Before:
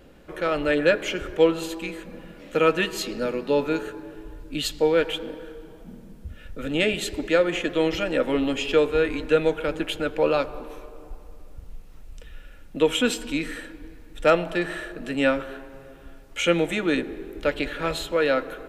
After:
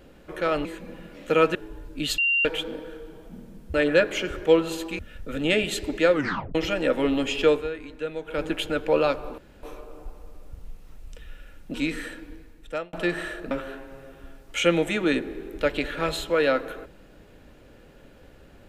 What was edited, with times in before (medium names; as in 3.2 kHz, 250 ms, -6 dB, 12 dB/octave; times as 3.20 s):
0.65–1.90 s: move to 6.29 s
2.80–4.10 s: delete
4.73–5.00 s: bleep 2.77 kHz -19 dBFS
7.43 s: tape stop 0.42 s
8.82–9.72 s: dip -11.5 dB, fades 0.18 s
10.68 s: insert room tone 0.25 s
12.79–13.26 s: delete
13.78–14.45 s: fade out
15.03–15.33 s: delete